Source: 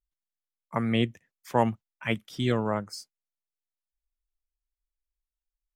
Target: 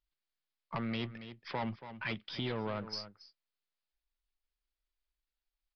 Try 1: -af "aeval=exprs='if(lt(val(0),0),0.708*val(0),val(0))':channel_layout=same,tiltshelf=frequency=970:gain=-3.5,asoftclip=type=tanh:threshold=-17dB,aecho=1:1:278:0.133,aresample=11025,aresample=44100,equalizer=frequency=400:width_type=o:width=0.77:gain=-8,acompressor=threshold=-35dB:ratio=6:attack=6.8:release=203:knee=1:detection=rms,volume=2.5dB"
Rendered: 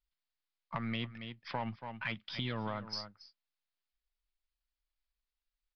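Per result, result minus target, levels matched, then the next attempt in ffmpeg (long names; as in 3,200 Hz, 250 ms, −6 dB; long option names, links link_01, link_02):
soft clipping: distortion −10 dB; 500 Hz band −3.0 dB
-af "aeval=exprs='if(lt(val(0),0),0.708*val(0),val(0))':channel_layout=same,tiltshelf=frequency=970:gain=-3.5,asoftclip=type=tanh:threshold=-28dB,aecho=1:1:278:0.133,aresample=11025,aresample=44100,equalizer=frequency=400:width_type=o:width=0.77:gain=-8,acompressor=threshold=-35dB:ratio=6:attack=6.8:release=203:knee=1:detection=rms,volume=2.5dB"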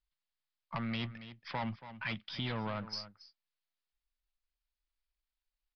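500 Hz band −4.0 dB
-af "aeval=exprs='if(lt(val(0),0),0.708*val(0),val(0))':channel_layout=same,tiltshelf=frequency=970:gain=-3.5,asoftclip=type=tanh:threshold=-28dB,aecho=1:1:278:0.133,aresample=11025,aresample=44100,equalizer=frequency=400:width_type=o:width=0.77:gain=2.5,acompressor=threshold=-35dB:ratio=6:attack=6.8:release=203:knee=1:detection=rms,volume=2.5dB"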